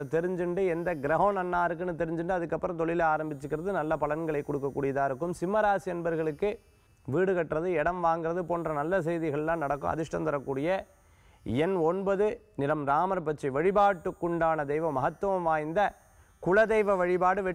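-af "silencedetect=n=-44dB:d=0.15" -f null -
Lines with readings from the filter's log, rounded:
silence_start: 6.56
silence_end: 7.08 | silence_duration: 0.52
silence_start: 10.84
silence_end: 11.46 | silence_duration: 0.62
silence_start: 12.37
silence_end: 12.58 | silence_duration: 0.22
silence_start: 15.91
silence_end: 16.43 | silence_duration: 0.51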